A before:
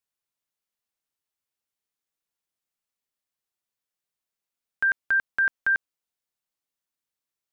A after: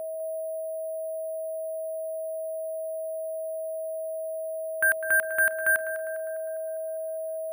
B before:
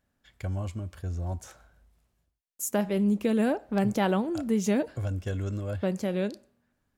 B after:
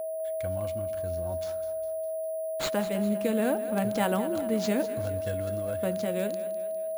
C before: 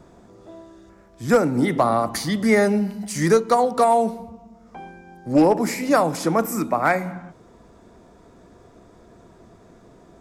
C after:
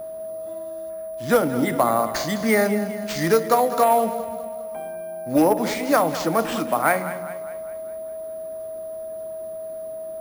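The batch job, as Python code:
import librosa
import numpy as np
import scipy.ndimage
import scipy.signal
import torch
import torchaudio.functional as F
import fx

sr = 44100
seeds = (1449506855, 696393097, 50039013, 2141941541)

y = x + 10.0 ** (-30.0 / 20.0) * np.sin(2.0 * np.pi * 640.0 * np.arange(len(x)) / sr)
y = fx.low_shelf(y, sr, hz=210.0, db=-7.0)
y = fx.notch(y, sr, hz=390.0, q=13.0)
y = fx.echo_split(y, sr, split_hz=330.0, low_ms=142, high_ms=202, feedback_pct=52, wet_db=-13.0)
y = np.repeat(y[::4], 4)[:len(y)]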